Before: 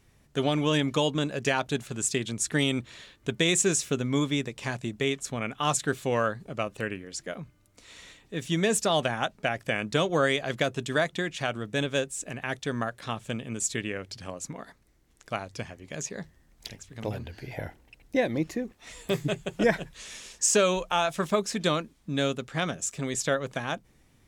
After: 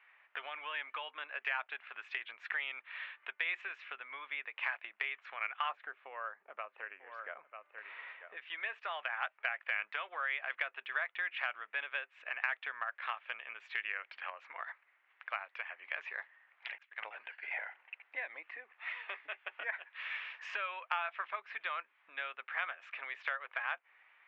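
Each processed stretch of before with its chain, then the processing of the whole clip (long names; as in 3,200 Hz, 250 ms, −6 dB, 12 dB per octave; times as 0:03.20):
0:05.69–0:08.37: tilt shelving filter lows +9.5 dB, about 1,200 Hz + single-tap delay 942 ms −18.5 dB
0:16.78–0:17.47: downward expander −39 dBFS + one half of a high-frequency compander encoder only
whole clip: Butterworth low-pass 2,500 Hz 36 dB per octave; downward compressor 5 to 1, threshold −37 dBFS; Bessel high-pass filter 1,500 Hz, order 4; level +11 dB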